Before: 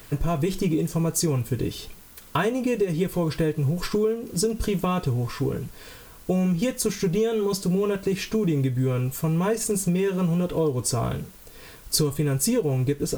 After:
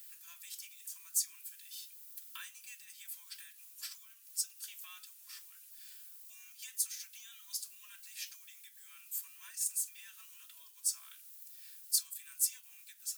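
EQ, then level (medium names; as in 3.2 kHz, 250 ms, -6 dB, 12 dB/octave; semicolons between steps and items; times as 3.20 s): high-pass 1.4 kHz 24 dB/octave; differentiator; band-stop 2.1 kHz, Q 26; -6.5 dB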